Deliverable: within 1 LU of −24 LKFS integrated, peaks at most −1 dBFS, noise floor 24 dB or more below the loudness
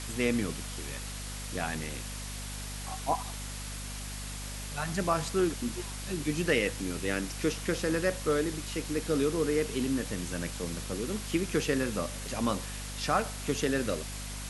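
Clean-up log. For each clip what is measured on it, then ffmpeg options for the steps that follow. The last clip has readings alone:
mains hum 50 Hz; hum harmonics up to 250 Hz; level of the hum −38 dBFS; background noise floor −39 dBFS; target noise floor −56 dBFS; integrated loudness −32.0 LKFS; sample peak −12.0 dBFS; target loudness −24.0 LKFS
→ -af "bandreject=frequency=50:width_type=h:width=4,bandreject=frequency=100:width_type=h:width=4,bandreject=frequency=150:width_type=h:width=4,bandreject=frequency=200:width_type=h:width=4,bandreject=frequency=250:width_type=h:width=4"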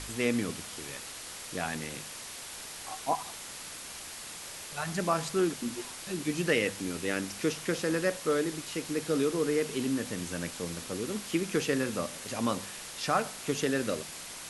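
mains hum none found; background noise floor −43 dBFS; target noise floor −57 dBFS
→ -af "afftdn=noise_reduction=14:noise_floor=-43"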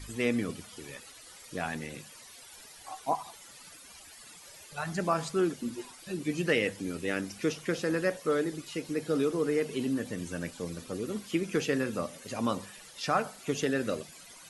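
background noise floor −51 dBFS; target noise floor −57 dBFS
→ -af "afftdn=noise_reduction=6:noise_floor=-51"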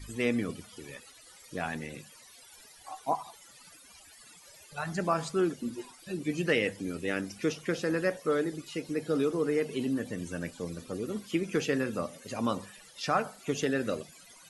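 background noise floor −55 dBFS; target noise floor −57 dBFS
→ -af "afftdn=noise_reduction=6:noise_floor=-55"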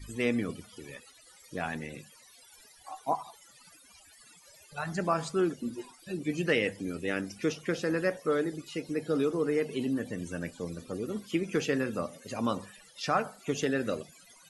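background noise floor −58 dBFS; integrated loudness −32.5 LKFS; sample peak −13.0 dBFS; target loudness −24.0 LKFS
→ -af "volume=8.5dB"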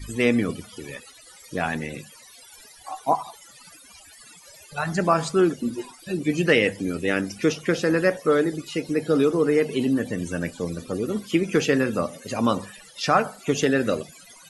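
integrated loudness −24.0 LKFS; sample peak −4.5 dBFS; background noise floor −49 dBFS

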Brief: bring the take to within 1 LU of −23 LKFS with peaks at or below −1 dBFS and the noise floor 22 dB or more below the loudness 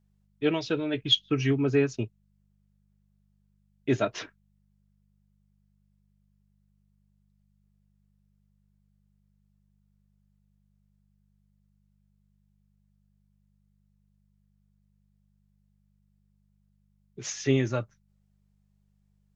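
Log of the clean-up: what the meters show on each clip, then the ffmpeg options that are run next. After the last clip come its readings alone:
mains hum 50 Hz; hum harmonics up to 200 Hz; level of the hum −66 dBFS; integrated loudness −27.5 LKFS; sample peak −10.0 dBFS; target loudness −23.0 LKFS
→ -af "bandreject=frequency=50:width_type=h:width=4,bandreject=frequency=100:width_type=h:width=4,bandreject=frequency=150:width_type=h:width=4,bandreject=frequency=200:width_type=h:width=4"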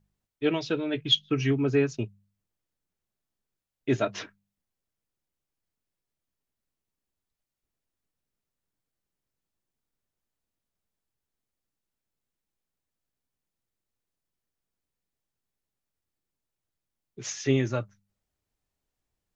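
mains hum none found; integrated loudness −27.5 LKFS; sample peak −10.0 dBFS; target loudness −23.0 LKFS
→ -af "volume=4.5dB"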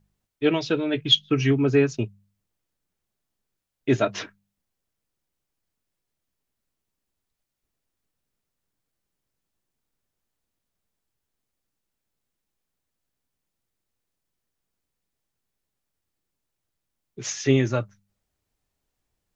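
integrated loudness −23.0 LKFS; sample peak −5.5 dBFS; background noise floor −83 dBFS

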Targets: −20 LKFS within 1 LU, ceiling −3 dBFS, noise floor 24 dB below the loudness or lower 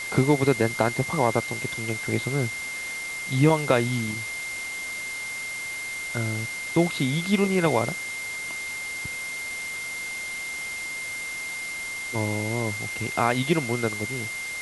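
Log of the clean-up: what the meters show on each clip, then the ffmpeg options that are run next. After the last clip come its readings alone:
interfering tone 2,100 Hz; level of the tone −31 dBFS; background noise floor −33 dBFS; target noise floor −51 dBFS; integrated loudness −26.5 LKFS; sample peak −5.0 dBFS; target loudness −20.0 LKFS
→ -af "bandreject=frequency=2100:width=30"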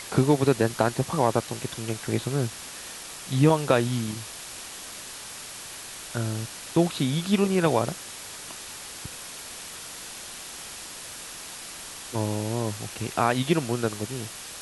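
interfering tone none found; background noise floor −40 dBFS; target noise floor −52 dBFS
→ -af "afftdn=noise_reduction=12:noise_floor=-40"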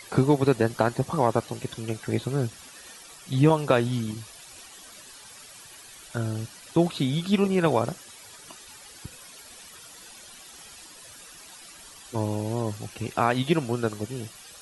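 background noise floor −47 dBFS; target noise floor −50 dBFS
→ -af "afftdn=noise_reduction=6:noise_floor=-47"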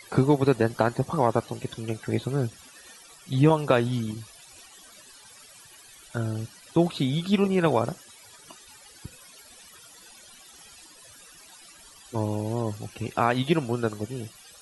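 background noise floor −51 dBFS; integrated loudness −26.0 LKFS; sample peak −5.0 dBFS; target loudness −20.0 LKFS
→ -af "volume=6dB,alimiter=limit=-3dB:level=0:latency=1"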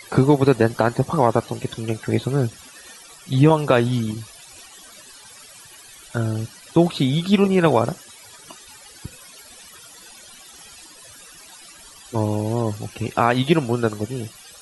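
integrated loudness −20.5 LKFS; sample peak −3.0 dBFS; background noise floor −45 dBFS

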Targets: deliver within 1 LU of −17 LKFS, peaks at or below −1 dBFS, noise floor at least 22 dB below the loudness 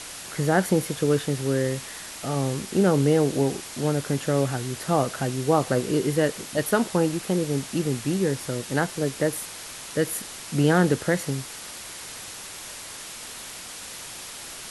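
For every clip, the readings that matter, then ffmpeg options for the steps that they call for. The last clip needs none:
background noise floor −39 dBFS; target noise floor −47 dBFS; integrated loudness −25.0 LKFS; sample peak −7.0 dBFS; target loudness −17.0 LKFS
→ -af "afftdn=noise_reduction=8:noise_floor=-39"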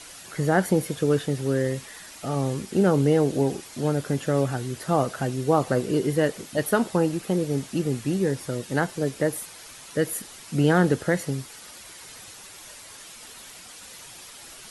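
background noise floor −45 dBFS; target noise floor −47 dBFS
→ -af "afftdn=noise_reduction=6:noise_floor=-45"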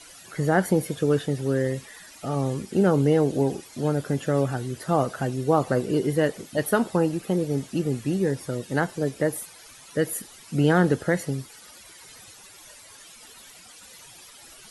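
background noise floor −48 dBFS; integrated loudness −25.0 LKFS; sample peak −7.0 dBFS; target loudness −17.0 LKFS
→ -af "volume=8dB,alimiter=limit=-1dB:level=0:latency=1"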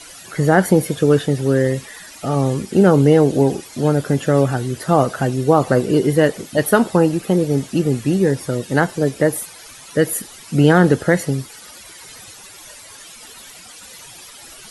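integrated loudness −17.0 LKFS; sample peak −1.0 dBFS; background noise floor −40 dBFS

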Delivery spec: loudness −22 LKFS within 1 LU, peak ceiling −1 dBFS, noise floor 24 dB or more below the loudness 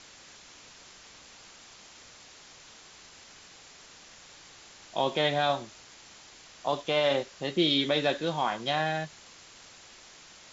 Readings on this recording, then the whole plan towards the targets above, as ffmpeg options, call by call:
background noise floor −52 dBFS; target noise floor −53 dBFS; integrated loudness −28.5 LKFS; sample peak −12.5 dBFS; target loudness −22.0 LKFS
→ -af "afftdn=noise_reduction=6:noise_floor=-52"
-af "volume=6.5dB"

